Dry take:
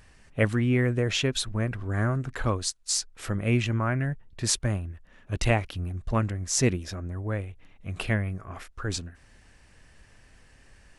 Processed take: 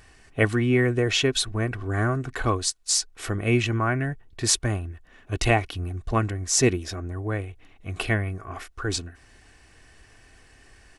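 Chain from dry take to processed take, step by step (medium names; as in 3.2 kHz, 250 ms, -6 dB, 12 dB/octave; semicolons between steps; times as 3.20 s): bass shelf 71 Hz -7.5 dB; comb 2.7 ms, depth 45%; trim +3.5 dB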